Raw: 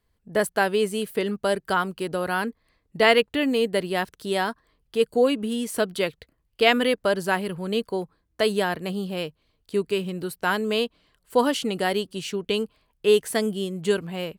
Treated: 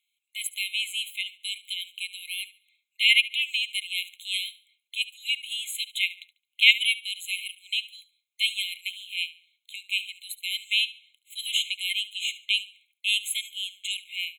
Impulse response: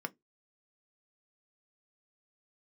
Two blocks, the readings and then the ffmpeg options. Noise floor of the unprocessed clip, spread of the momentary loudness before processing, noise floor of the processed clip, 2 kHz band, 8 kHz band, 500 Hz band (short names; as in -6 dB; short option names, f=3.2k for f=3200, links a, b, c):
-71 dBFS, 9 LU, -83 dBFS, +1.0 dB, +2.0 dB, under -40 dB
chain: -filter_complex "[0:a]aecho=1:1:72|144|216:0.141|0.0424|0.0127,asplit=2[a][b];[1:a]atrim=start_sample=2205,asetrate=88200,aresample=44100[c];[b][c]afir=irnorm=-1:irlink=0,volume=6dB[d];[a][d]amix=inputs=2:normalize=0,afftfilt=real='re*eq(mod(floor(b*sr/1024/2100),2),1)':imag='im*eq(mod(floor(b*sr/1024/2100),2),1)':win_size=1024:overlap=0.75"